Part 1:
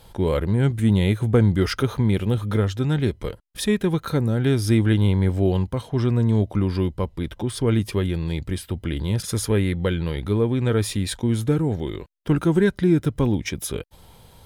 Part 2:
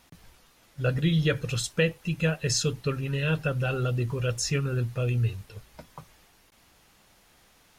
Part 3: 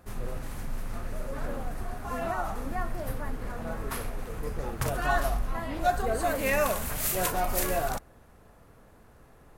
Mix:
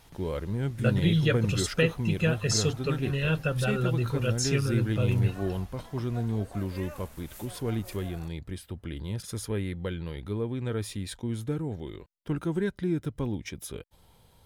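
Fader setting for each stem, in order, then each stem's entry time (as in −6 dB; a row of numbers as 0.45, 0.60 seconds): −10.5, −0.5, −19.0 decibels; 0.00, 0.00, 0.30 seconds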